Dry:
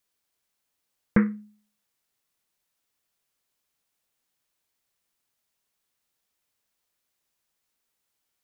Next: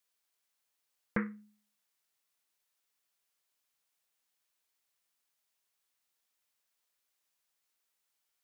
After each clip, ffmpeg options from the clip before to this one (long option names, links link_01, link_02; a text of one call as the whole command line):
ffmpeg -i in.wav -filter_complex "[0:a]lowshelf=frequency=370:gain=-11,asplit=2[link_01][link_02];[link_02]alimiter=limit=-20dB:level=0:latency=1:release=309,volume=0dB[link_03];[link_01][link_03]amix=inputs=2:normalize=0,volume=-8.5dB" out.wav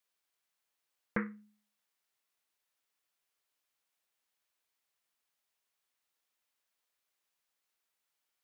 ffmpeg -i in.wav -af "bass=frequency=250:gain=-3,treble=frequency=4000:gain=-4" out.wav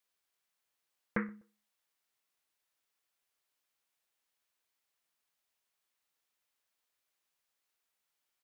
ffmpeg -i in.wav -filter_complex "[0:a]asplit=2[link_01][link_02];[link_02]adelay=125,lowpass=frequency=840:poles=1,volume=-23.5dB,asplit=2[link_03][link_04];[link_04]adelay=125,lowpass=frequency=840:poles=1,volume=0.36[link_05];[link_01][link_03][link_05]amix=inputs=3:normalize=0" out.wav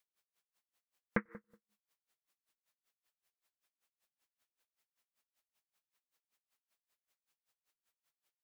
ffmpeg -i in.wav -filter_complex "[0:a]asplit=2[link_01][link_02];[link_02]adelay=93,lowpass=frequency=1600:poles=1,volume=-11dB,asplit=2[link_03][link_04];[link_04]adelay=93,lowpass=frequency=1600:poles=1,volume=0.41,asplit=2[link_05][link_06];[link_06]adelay=93,lowpass=frequency=1600:poles=1,volume=0.41,asplit=2[link_07][link_08];[link_08]adelay=93,lowpass=frequency=1600:poles=1,volume=0.41[link_09];[link_01][link_03][link_05][link_07][link_09]amix=inputs=5:normalize=0,aeval=exprs='val(0)*pow(10,-34*(0.5-0.5*cos(2*PI*5.2*n/s))/20)':channel_layout=same,volume=3.5dB" out.wav